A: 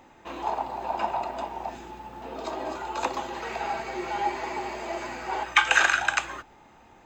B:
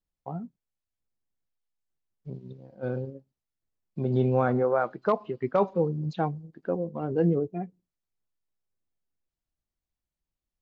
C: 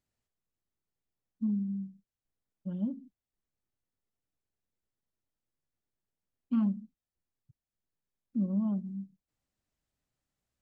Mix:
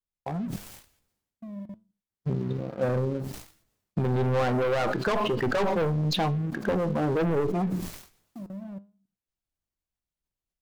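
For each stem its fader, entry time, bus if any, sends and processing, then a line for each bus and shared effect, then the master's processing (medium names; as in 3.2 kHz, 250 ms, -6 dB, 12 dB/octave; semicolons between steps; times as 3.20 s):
mute
+1.0 dB, 0.00 s, bus A, no send, one-sided clip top -31.5 dBFS, bottom -15 dBFS; decay stretcher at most 58 dB/s
-15.0 dB, 0.00 s, bus A, no send, level held to a coarse grid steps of 17 dB
bus A: 0.0 dB, waveshaping leveller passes 3; compression, threshold -26 dBFS, peak gain reduction 8.5 dB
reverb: none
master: flange 1.1 Hz, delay 9.1 ms, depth 1.5 ms, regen +83%; level rider gain up to 6.5 dB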